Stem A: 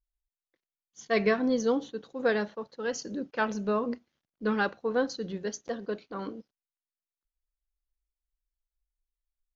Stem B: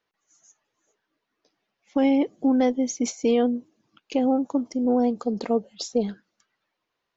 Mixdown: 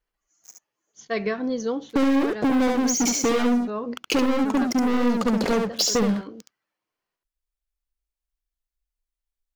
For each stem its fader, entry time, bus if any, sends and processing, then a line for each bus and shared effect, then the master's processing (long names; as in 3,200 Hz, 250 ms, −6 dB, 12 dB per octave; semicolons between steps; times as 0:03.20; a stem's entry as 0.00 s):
+1.0 dB, 0.00 s, no send, no echo send, no processing
+2.0 dB, 0.00 s, no send, echo send −3.5 dB, notch filter 3,700 Hz, Q 8.6; leveller curve on the samples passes 5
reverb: not used
echo: single-tap delay 70 ms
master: downward compressor 4 to 1, threshold −21 dBFS, peak gain reduction 11.5 dB